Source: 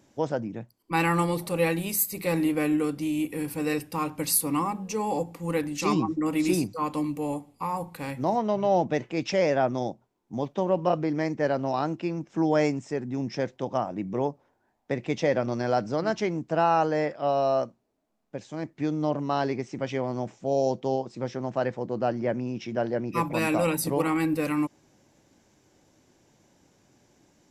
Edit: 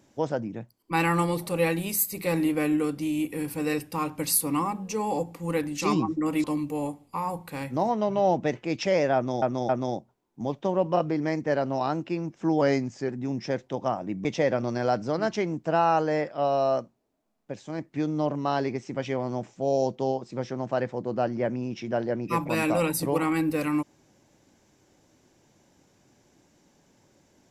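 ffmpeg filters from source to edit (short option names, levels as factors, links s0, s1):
-filter_complex "[0:a]asplit=7[s0][s1][s2][s3][s4][s5][s6];[s0]atrim=end=6.442[s7];[s1]atrim=start=6.908:end=9.892[s8];[s2]atrim=start=9.618:end=9.892[s9];[s3]atrim=start=9.618:end=12.544[s10];[s4]atrim=start=12.54:end=12.98,asetpts=PTS-STARTPTS,asetrate=40572,aresample=44100,atrim=end_sample=21091,asetpts=PTS-STARTPTS[s11];[s5]atrim=start=12.976:end=14.142[s12];[s6]atrim=start=15.088[s13];[s7][s8]acrossfade=d=0.004:c1=hsin:c2=hsin[s14];[s14][s9]acrossfade=d=0.004:c1=hsin:c2=hsin[s15];[s15][s10]acrossfade=d=0.004:c1=hsin:c2=hsin[s16];[s16][s11]acrossfade=d=0.004:c1=hsin:c2=hsin[s17];[s17][s12]acrossfade=d=0.004:c1=hsin:c2=hsin[s18];[s18][s13]acrossfade=d=0.004:c1=hsin:c2=hsin"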